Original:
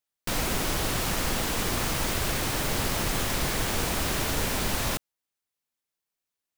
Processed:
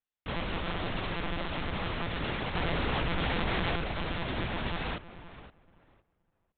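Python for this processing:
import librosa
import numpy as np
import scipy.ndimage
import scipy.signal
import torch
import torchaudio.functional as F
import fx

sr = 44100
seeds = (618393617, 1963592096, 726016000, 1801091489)

p1 = x + fx.echo_filtered(x, sr, ms=516, feedback_pct=20, hz=2300.0, wet_db=-13.5, dry=0)
p2 = fx.lpc_monotone(p1, sr, seeds[0], pitch_hz=170.0, order=10)
p3 = fx.env_flatten(p2, sr, amount_pct=100, at=(2.55, 3.76))
y = p3 * 10.0 ** (-5.0 / 20.0)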